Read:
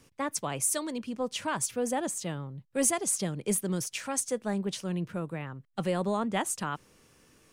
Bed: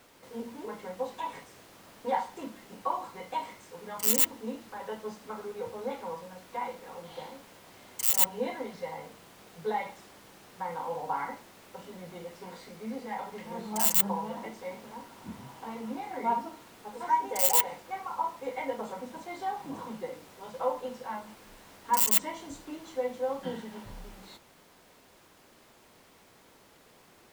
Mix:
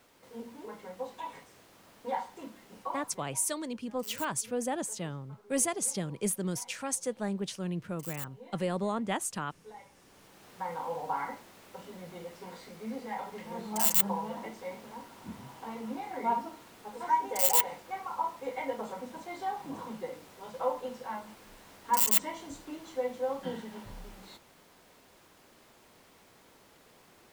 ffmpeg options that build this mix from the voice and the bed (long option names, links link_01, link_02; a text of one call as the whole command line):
ffmpeg -i stem1.wav -i stem2.wav -filter_complex "[0:a]adelay=2750,volume=-2.5dB[link_01];[1:a]volume=13dB,afade=type=out:start_time=2.77:duration=0.58:silence=0.199526,afade=type=in:start_time=9.89:duration=0.61:silence=0.133352[link_02];[link_01][link_02]amix=inputs=2:normalize=0" out.wav